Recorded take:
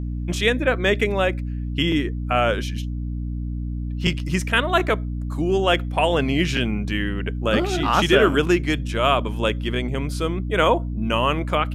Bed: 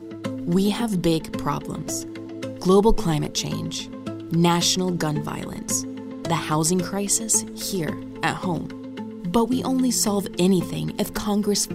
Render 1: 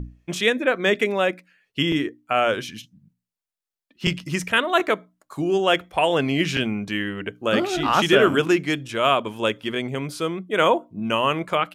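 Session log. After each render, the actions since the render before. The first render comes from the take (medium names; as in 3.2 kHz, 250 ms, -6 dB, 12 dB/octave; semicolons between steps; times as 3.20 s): hum notches 60/120/180/240/300 Hz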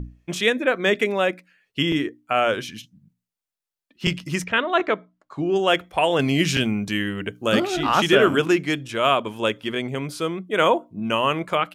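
4.44–5.56 s: distance through air 150 m; 6.19–7.60 s: tone controls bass +4 dB, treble +8 dB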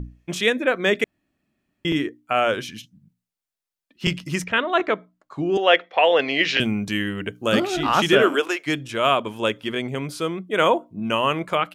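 1.04–1.85 s: room tone; 5.57–6.60 s: cabinet simulation 410–5000 Hz, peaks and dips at 500 Hz +7 dB, 730 Hz +3 dB, 1.9 kHz +8 dB, 2.7 kHz +3 dB, 4 kHz +4 dB; 8.22–8.66 s: high-pass 220 Hz -> 640 Hz 24 dB/octave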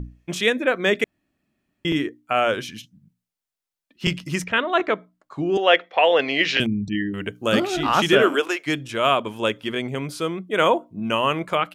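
6.66–7.14 s: resonances exaggerated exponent 3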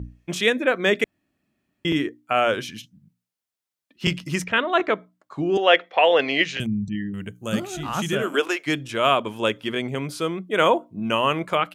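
high-pass 47 Hz; 6.44–8.34 s: time-frequency box 230–5900 Hz -9 dB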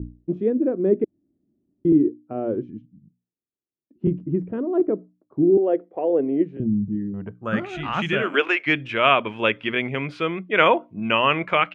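low-pass sweep 340 Hz -> 2.4 kHz, 6.81–7.71 s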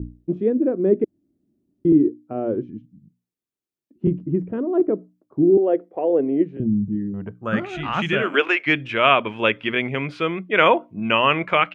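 trim +1.5 dB; peak limiter -2 dBFS, peak gain reduction 1.5 dB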